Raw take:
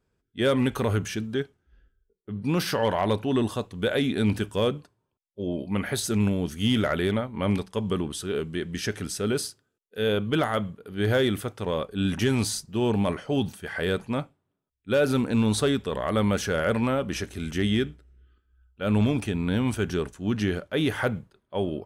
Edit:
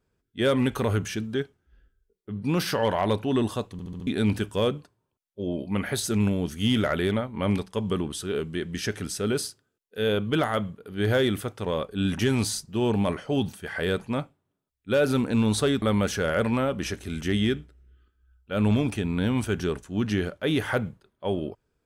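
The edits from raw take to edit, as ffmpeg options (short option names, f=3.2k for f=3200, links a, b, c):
-filter_complex "[0:a]asplit=7[a][b][c][d][e][f][g];[a]atrim=end=3.792[h];[b]atrim=start=3.718:end=3.792[i];[c]atrim=start=3.718:end=3.792[j];[d]atrim=start=3.718:end=3.792[k];[e]atrim=start=3.718:end=3.792[l];[f]atrim=start=4.068:end=15.822[m];[g]atrim=start=16.118[n];[h][i]acrossfade=d=0.004:c1=hsin:c2=hsin[o];[o][j]acrossfade=d=0.004:c1=hsin:c2=hsin[p];[p][k]acrossfade=d=0.004:c1=hsin:c2=hsin[q];[q][l]acrossfade=d=0.004:c1=hsin:c2=hsin[r];[r][m]acrossfade=d=0.004:c1=hsin:c2=hsin[s];[s][n]acrossfade=d=0.004:c1=hsin:c2=hsin"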